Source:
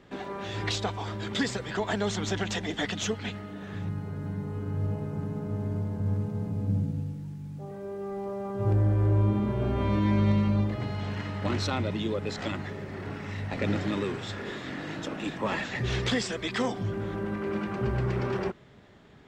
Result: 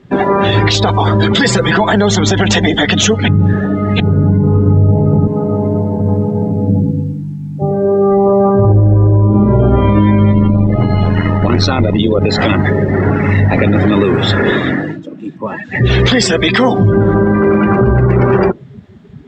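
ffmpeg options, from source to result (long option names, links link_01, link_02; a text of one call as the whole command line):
ffmpeg -i in.wav -filter_complex "[0:a]asettb=1/sr,asplit=3[link_01][link_02][link_03];[link_01]atrim=end=1.354[link_04];[link_02]atrim=start=1.35:end=1.92,asetpts=PTS-STARTPTS,afade=type=in:duration=0.004:curve=qsin,afade=type=out:start_time=0.566:duration=0.004:curve=qsin,aecho=1:1:5.9:0.64,atrim=end_sample=25137[link_05];[link_03]atrim=start=1.916[link_06];[link_04][link_05]acrossfade=duration=0.004:curve1=hsin:curve2=qsin[link_07];[link_07][link_06]acrossfade=duration=0.004:curve1=qsin:curve2=hsin,asettb=1/sr,asplit=3[link_08][link_09][link_10];[link_08]atrim=end=5.274[link_11];[link_09]atrim=start=5.27:end=7.62,asetpts=PTS-STARTPTS,afade=type=in:duration=0.004:curve=qsin,afade=type=out:start_time=2.346:duration=0.004:curve=qsin,highpass=frequency=420:poles=1[link_12];[link_10]atrim=start=7.616[link_13];[link_11][link_12]acrossfade=duration=0.004:curve1=hsin:curve2=qsin[link_14];[link_14][link_13]acrossfade=duration=0.004:curve1=qsin:curve2=hsin,asettb=1/sr,asplit=3[link_15][link_16][link_17];[link_15]atrim=end=10.334[link_18];[link_16]atrim=start=10.33:end=12.21,asetpts=PTS-STARTPTS,afade=type=in:duration=0.004:curve=qsin,afade=type=out:start_time=1.876:duration=0.004:curve=qsin,tremolo=f=83:d=0.667[link_19];[link_17]atrim=start=12.206[link_20];[link_18][link_19]acrossfade=duration=0.004:curve1=hsin:curve2=qsin[link_21];[link_21][link_20]acrossfade=duration=0.004:curve1=qsin:curve2=hsin,asplit=5[link_22][link_23][link_24][link_25][link_26];[link_22]atrim=end=3.282[link_27];[link_23]atrim=start=3.278:end=4.002,asetpts=PTS-STARTPTS,areverse[link_28];[link_24]atrim=start=3.998:end=15.01,asetpts=PTS-STARTPTS,afade=type=out:start_time=10.582:duration=0.43:silence=0.16788[link_29];[link_25]atrim=start=15.01:end=15.65,asetpts=PTS-STARTPTS,volume=-15.5dB[link_30];[link_26]atrim=start=15.65,asetpts=PTS-STARTPTS,afade=type=in:duration=0.43:silence=0.16788[link_31];[link_27][link_28]acrossfade=duration=0.004:curve1=hsin:curve2=hsin[link_32];[link_29][link_30][link_31]concat=n=3:v=0:a=1[link_33];[link_32][link_33]acrossfade=duration=0.004:curve1=hsin:curve2=hsin,acompressor=threshold=-32dB:ratio=2,afftdn=noise_reduction=21:noise_floor=-42,alimiter=level_in=27dB:limit=-1dB:release=50:level=0:latency=1,volume=-1dB" out.wav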